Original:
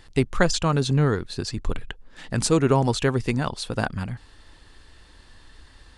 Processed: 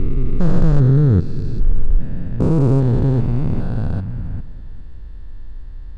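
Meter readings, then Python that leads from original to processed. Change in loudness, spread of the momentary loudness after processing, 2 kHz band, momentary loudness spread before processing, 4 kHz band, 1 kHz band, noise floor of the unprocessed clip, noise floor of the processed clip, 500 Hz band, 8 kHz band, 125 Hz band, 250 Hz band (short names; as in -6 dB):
+5.5 dB, 13 LU, under -10 dB, 14 LU, under -15 dB, -6.5 dB, -52 dBFS, -31 dBFS, -0.5 dB, under -20 dB, +9.5 dB, +5.5 dB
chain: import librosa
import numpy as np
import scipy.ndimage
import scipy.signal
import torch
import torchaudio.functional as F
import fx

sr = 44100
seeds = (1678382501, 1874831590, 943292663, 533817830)

y = fx.spec_steps(x, sr, hold_ms=400)
y = fx.tilt_eq(y, sr, slope=-4.5)
y = fx.echo_heads(y, sr, ms=203, heads='first and second', feedback_pct=43, wet_db=-20.5)
y = y * 10.0 ** (-1.0 / 20.0)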